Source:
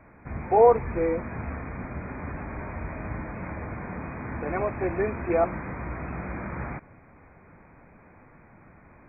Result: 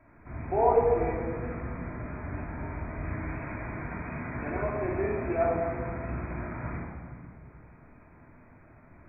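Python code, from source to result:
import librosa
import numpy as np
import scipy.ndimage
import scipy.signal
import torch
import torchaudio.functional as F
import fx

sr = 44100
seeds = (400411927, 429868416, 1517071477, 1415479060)

y = fx.high_shelf(x, sr, hz=2100.0, db=9.5, at=(3.05, 4.5))
y = y + 10.0 ** (-16.5 / 20.0) * np.pad(y, (int(417 * sr / 1000.0), 0))[:len(y)]
y = fx.room_shoebox(y, sr, seeds[0], volume_m3=1300.0, walls='mixed', distance_m=2.9)
y = y * librosa.db_to_amplitude(-9.0)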